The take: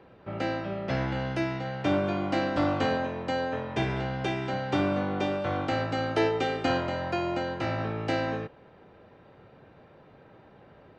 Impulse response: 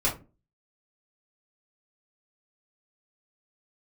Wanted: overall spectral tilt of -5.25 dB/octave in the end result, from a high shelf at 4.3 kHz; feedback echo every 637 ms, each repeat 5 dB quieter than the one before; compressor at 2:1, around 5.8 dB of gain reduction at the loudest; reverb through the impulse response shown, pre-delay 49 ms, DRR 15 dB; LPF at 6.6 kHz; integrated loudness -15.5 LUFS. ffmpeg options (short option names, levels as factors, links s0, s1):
-filter_complex "[0:a]lowpass=6600,highshelf=f=4300:g=-6,acompressor=threshold=0.0251:ratio=2,aecho=1:1:637|1274|1911|2548|3185|3822|4459:0.562|0.315|0.176|0.0988|0.0553|0.031|0.0173,asplit=2[s0][s1];[1:a]atrim=start_sample=2205,adelay=49[s2];[s1][s2]afir=irnorm=-1:irlink=0,volume=0.0562[s3];[s0][s3]amix=inputs=2:normalize=0,volume=7.08"